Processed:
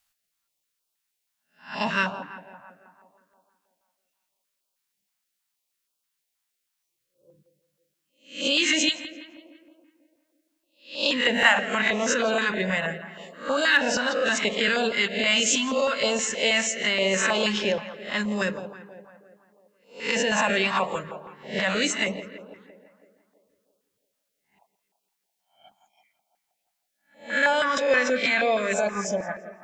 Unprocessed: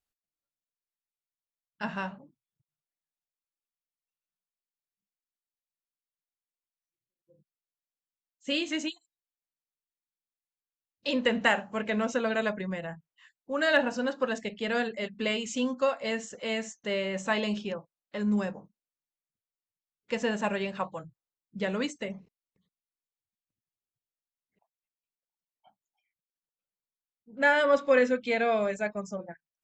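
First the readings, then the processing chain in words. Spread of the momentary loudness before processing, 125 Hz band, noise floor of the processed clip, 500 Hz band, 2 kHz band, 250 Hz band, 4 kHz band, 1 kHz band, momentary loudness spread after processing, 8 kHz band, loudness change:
15 LU, +3.5 dB, −80 dBFS, +3.0 dB, +8.0 dB, +2.0 dB, +11.5 dB, +5.5 dB, 16 LU, +16.0 dB, +6.0 dB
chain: peak hold with a rise ahead of every peak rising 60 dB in 0.37 s
in parallel at +1 dB: compressor whose output falls as the input rises −31 dBFS, ratio −0.5
on the sum: low-shelf EQ 450 Hz −11.5 dB
tape delay 168 ms, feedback 69%, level −11.5 dB, low-pass 2,300 Hz
notch on a step sequencer 6.3 Hz 400–1,900 Hz
level +6 dB

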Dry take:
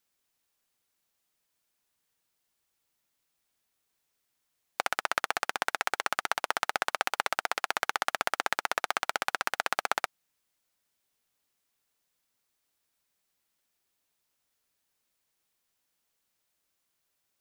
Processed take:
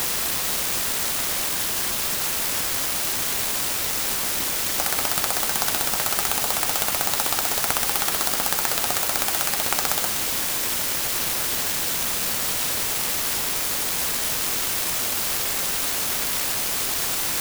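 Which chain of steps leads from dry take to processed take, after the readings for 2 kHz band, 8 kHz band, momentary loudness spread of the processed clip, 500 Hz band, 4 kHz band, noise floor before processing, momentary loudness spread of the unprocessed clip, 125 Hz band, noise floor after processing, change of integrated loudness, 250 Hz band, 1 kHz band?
+5.5 dB, +22.0 dB, 1 LU, +8.0 dB, +14.5 dB, −80 dBFS, 2 LU, +23.0 dB, −25 dBFS, +9.5 dB, +17.0 dB, +4.0 dB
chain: converter with a step at zero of −21 dBFS
flat-topped bell 4,800 Hz +11 dB 1.2 octaves
converter with an unsteady clock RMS 0.13 ms
level −1 dB

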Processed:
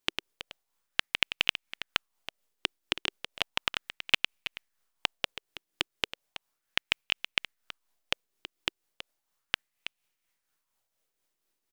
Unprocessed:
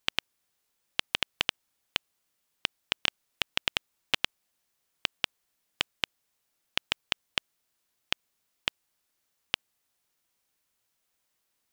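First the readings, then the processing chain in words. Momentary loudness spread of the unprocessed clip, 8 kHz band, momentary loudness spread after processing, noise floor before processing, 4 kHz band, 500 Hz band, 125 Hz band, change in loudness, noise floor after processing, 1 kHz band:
5 LU, −1.5 dB, 21 LU, −78 dBFS, +0.5 dB, +1.5 dB, −1.0 dB, +1.0 dB, −83 dBFS, +0.5 dB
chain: in parallel at −9 dB: slack as between gear wheels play −31.5 dBFS
on the sum: shaped tremolo triangle 4.2 Hz, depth 60%
single-tap delay 325 ms −12.5 dB
auto-filter bell 0.35 Hz 340–2,600 Hz +8 dB
level −2 dB

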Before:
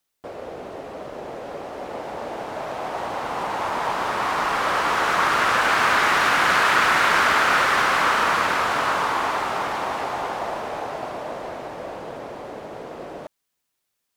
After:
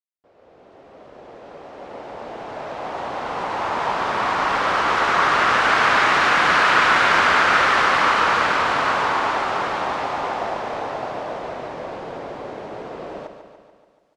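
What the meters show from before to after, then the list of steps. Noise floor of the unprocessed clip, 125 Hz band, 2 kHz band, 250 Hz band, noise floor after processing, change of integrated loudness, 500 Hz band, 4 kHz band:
−78 dBFS, +2.0 dB, +2.0 dB, +2.0 dB, −56 dBFS, +2.5 dB, +2.0 dB, +1.5 dB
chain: fade in at the beginning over 3.79 s
low-pass filter 5,800 Hz 12 dB per octave
repeating echo 144 ms, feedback 60%, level −9 dB
level +1.5 dB

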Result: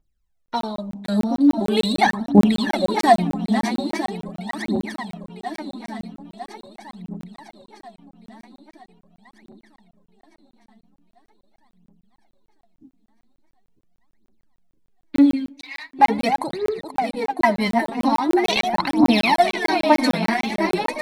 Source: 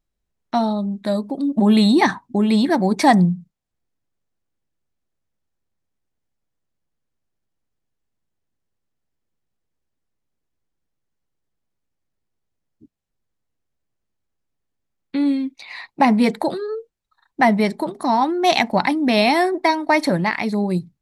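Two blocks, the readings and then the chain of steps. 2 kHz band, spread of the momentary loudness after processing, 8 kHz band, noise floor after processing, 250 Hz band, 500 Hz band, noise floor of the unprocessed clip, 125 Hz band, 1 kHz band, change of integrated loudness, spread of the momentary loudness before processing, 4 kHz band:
−0.5 dB, 18 LU, can't be measured, below −85 dBFS, −0.5 dB, −0.5 dB, −77 dBFS, −3.5 dB, +0.5 dB, −1.5 dB, 10 LU, 0.0 dB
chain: feedback delay that plays each chunk backwards 476 ms, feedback 76%, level −8 dB
phase shifter 0.42 Hz, delay 4.6 ms, feedback 78%
on a send: tape delay 84 ms, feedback 70%, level −22 dB, low-pass 1,400 Hz
on the sum: regular buffer underruns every 0.15 s, samples 1,024, zero, from 0:00.46
level −4.5 dB

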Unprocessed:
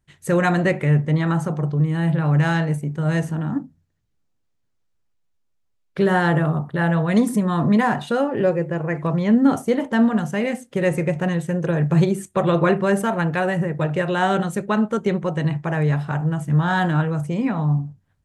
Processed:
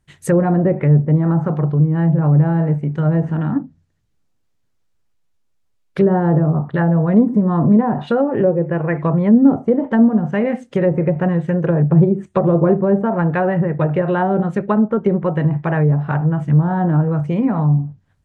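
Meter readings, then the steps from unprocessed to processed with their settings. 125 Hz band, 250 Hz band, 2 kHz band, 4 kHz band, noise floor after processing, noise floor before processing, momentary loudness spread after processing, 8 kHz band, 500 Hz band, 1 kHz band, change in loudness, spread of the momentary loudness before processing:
+5.0 dB, +5.0 dB, −4.5 dB, below −10 dB, −64 dBFS, −69 dBFS, 5 LU, can't be measured, +4.0 dB, +1.0 dB, +4.5 dB, 5 LU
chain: treble cut that deepens with the level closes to 630 Hz, closed at −15.5 dBFS
level +5 dB

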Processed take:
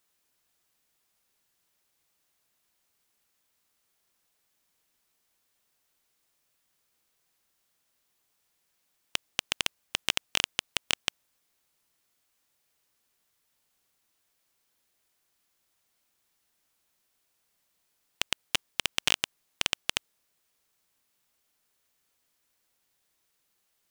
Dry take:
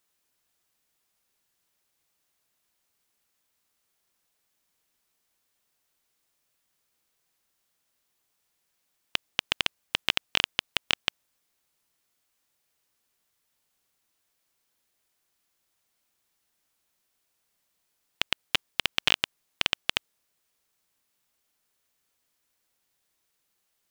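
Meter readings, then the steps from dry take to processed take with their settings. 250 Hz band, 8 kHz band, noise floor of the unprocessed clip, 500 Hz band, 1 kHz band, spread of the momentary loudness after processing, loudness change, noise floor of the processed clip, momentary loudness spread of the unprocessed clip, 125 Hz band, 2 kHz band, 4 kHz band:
−2.0 dB, +6.5 dB, −77 dBFS, −2.5 dB, −3.0 dB, 8 LU, −2.0 dB, −76 dBFS, 8 LU, −2.0 dB, −3.0 dB, −2.5 dB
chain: wavefolder on the positive side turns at −10.5 dBFS
level +1 dB

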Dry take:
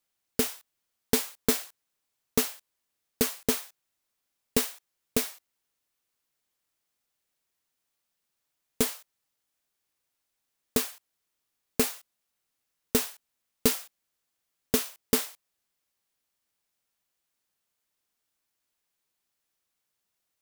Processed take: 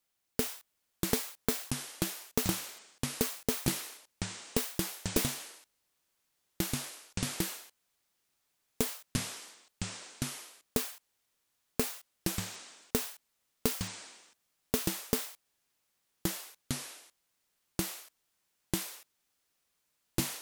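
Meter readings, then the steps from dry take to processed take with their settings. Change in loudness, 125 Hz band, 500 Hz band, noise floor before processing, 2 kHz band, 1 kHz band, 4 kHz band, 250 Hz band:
−6.0 dB, +4.5 dB, −5.0 dB, −82 dBFS, −1.5 dB, −1.0 dB, −1.5 dB, −2.0 dB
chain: downward compressor, threshold −26 dBFS, peak gain reduction 9 dB
delay with pitch and tempo change per echo 508 ms, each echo −5 semitones, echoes 3

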